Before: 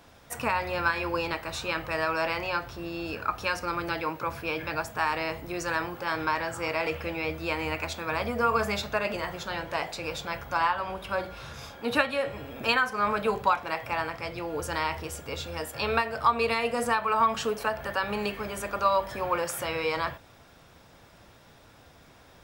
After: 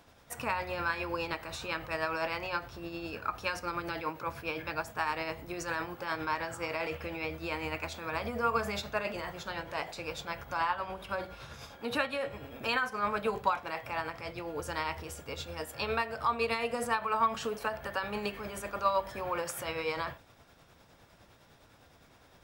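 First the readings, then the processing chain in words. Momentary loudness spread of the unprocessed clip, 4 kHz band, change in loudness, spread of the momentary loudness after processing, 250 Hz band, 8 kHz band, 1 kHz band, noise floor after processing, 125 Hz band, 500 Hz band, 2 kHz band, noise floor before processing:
9 LU, -5.5 dB, -5.5 dB, 9 LU, -5.5 dB, -5.0 dB, -5.5 dB, -61 dBFS, -5.5 dB, -5.5 dB, -5.5 dB, -55 dBFS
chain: tremolo 9.8 Hz, depth 40%; trim -3.5 dB

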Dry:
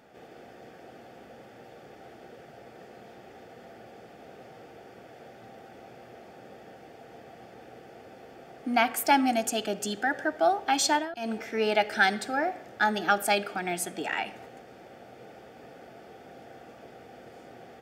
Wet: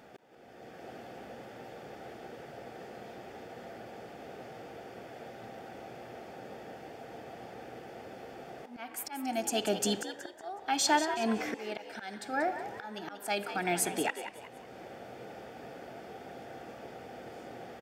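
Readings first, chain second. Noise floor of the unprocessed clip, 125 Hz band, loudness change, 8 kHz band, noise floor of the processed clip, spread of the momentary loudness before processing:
-51 dBFS, -1.0 dB, -10.0 dB, -1.5 dB, -50 dBFS, 9 LU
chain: slow attack 728 ms; frequency-shifting echo 185 ms, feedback 37%, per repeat +75 Hz, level -11 dB; trim +2 dB

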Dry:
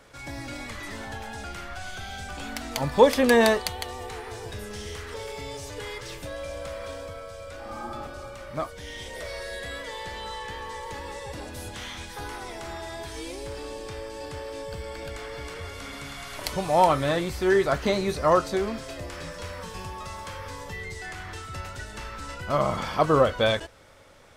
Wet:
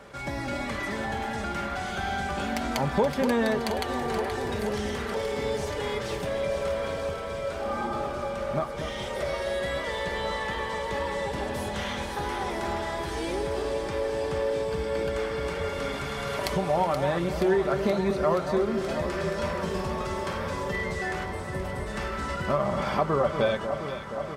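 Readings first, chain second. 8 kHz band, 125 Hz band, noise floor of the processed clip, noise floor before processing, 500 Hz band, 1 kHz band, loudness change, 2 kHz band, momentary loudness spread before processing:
-3.0 dB, +2.0 dB, -34 dBFS, -41 dBFS, 0.0 dB, -0.5 dB, 0.0 dB, +0.5 dB, 16 LU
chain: high-pass 54 Hz; time-frequency box 21.25–21.87 s, 1.1–7.7 kHz -13 dB; treble shelf 2.7 kHz -10 dB; comb 5.1 ms, depth 46%; compression 3:1, threshold -33 dBFS, peak gain reduction 15.5 dB; on a send: echo whose repeats swap between lows and highs 238 ms, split 1.4 kHz, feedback 87%, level -8 dB; on the sum: trim +7 dB

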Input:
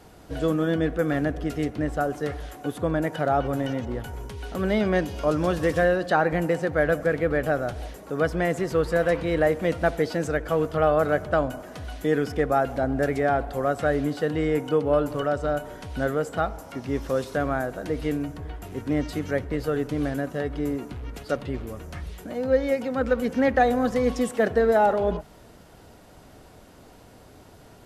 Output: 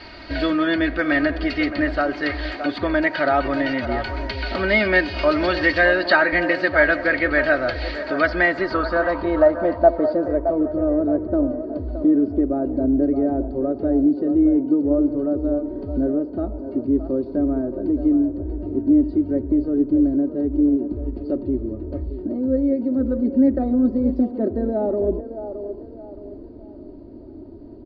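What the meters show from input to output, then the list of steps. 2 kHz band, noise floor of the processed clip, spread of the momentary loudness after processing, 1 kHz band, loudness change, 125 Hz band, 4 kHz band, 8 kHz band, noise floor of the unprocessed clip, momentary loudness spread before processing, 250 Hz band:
+9.0 dB, -39 dBFS, 11 LU, +0.5 dB, +4.5 dB, -2.0 dB, +7.5 dB, under -15 dB, -50 dBFS, 12 LU, +8.5 dB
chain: low-pass sweep 2.1 kHz -> 350 Hz, 8.20–10.79 s; in parallel at +2.5 dB: compression, threshold -32 dBFS, peak gain reduction 19.5 dB; on the sum: resonant low-pass 4.5 kHz, resonance Q 16; treble shelf 2.2 kHz +8 dB; comb 3.2 ms, depth 76%; on a send: feedback echo behind a band-pass 619 ms, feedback 37%, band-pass 670 Hz, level -8.5 dB; on the sum: trim -2.5 dB

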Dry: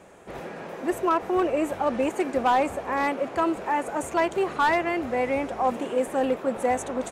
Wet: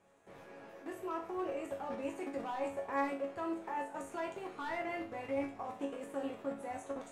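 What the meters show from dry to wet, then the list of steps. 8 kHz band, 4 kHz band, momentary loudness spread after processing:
-17.0 dB, -16.0 dB, 8 LU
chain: level held to a coarse grid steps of 15 dB; chord resonator F#2 minor, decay 0.39 s; trim +5.5 dB

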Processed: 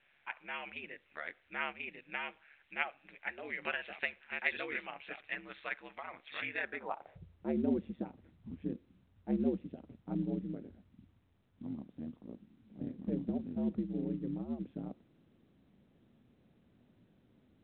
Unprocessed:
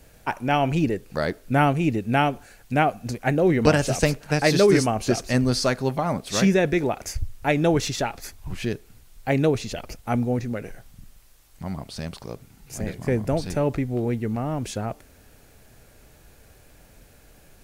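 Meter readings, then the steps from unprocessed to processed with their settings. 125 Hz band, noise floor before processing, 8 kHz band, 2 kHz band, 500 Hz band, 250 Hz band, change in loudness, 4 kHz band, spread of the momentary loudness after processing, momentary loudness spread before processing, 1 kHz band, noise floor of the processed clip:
-21.5 dB, -53 dBFS, under -40 dB, -9.5 dB, -20.5 dB, -14.0 dB, -16.0 dB, -18.5 dB, 13 LU, 15 LU, -20.0 dB, -71 dBFS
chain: ring modulator 72 Hz; band-pass sweep 2.2 kHz -> 240 Hz, 6.55–7.57 s; trim -3 dB; µ-law 64 kbps 8 kHz

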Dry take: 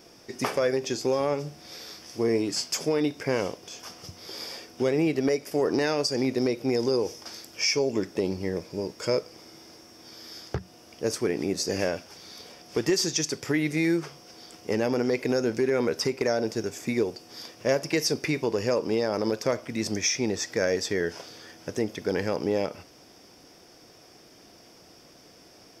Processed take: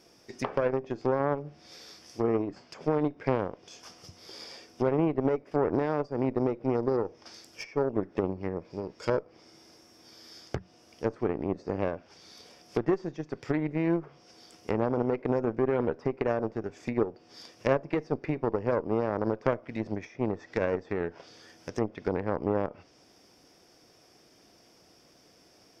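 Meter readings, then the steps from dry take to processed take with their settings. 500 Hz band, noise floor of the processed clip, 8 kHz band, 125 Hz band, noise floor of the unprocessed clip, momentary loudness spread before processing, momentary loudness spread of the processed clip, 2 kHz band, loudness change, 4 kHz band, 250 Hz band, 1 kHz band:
-3.0 dB, -60 dBFS, under -20 dB, 0.0 dB, -53 dBFS, 16 LU, 17 LU, -7.5 dB, -3.0 dB, -16.5 dB, -2.5 dB, +1.5 dB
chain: low-pass that closes with the level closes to 1.1 kHz, closed at -24 dBFS; Chebyshev shaper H 3 -13 dB, 4 -28 dB, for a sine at -13 dBFS; trim +3 dB

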